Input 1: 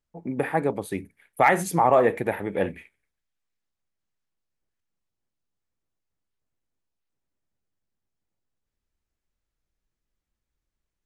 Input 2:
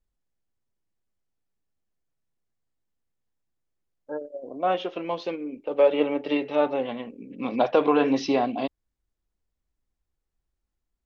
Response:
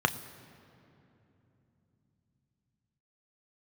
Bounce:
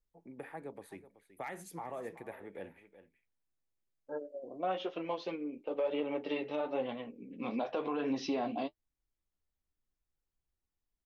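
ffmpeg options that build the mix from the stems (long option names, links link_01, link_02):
-filter_complex "[0:a]acrossover=split=330|3000[link_01][link_02][link_03];[link_02]acompressor=threshold=-27dB:ratio=2.5[link_04];[link_01][link_04][link_03]amix=inputs=3:normalize=0,bass=frequency=250:gain=-7,treble=frequency=4000:gain=-2,volume=-17dB,asplit=2[link_05][link_06];[link_06]volume=-14.5dB[link_07];[1:a]flanger=delay=6.1:depth=8:regen=-34:speed=1:shape=triangular,volume=-3.5dB[link_08];[link_07]aecho=0:1:376:1[link_09];[link_05][link_08][link_09]amix=inputs=3:normalize=0,alimiter=level_in=1dB:limit=-24dB:level=0:latency=1:release=124,volume=-1dB"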